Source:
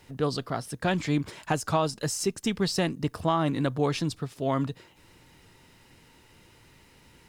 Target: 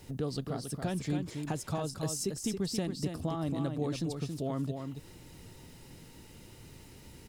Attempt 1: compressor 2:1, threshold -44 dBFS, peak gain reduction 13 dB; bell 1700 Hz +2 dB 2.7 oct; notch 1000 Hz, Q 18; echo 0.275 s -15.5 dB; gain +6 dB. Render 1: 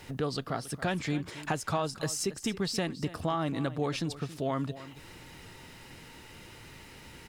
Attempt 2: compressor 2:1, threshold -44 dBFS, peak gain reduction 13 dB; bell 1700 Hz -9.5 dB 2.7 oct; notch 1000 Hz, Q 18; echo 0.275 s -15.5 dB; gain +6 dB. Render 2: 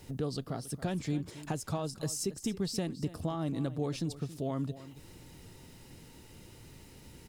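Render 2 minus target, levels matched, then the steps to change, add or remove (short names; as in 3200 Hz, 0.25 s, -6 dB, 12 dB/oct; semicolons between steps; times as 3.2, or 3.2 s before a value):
echo-to-direct -9.5 dB
change: echo 0.275 s -6 dB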